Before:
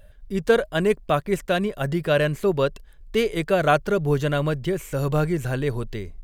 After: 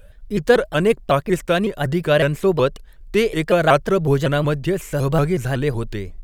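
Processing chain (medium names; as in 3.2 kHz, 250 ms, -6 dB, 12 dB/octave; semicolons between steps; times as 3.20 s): vibrato with a chosen wave saw up 5.4 Hz, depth 160 cents; trim +4 dB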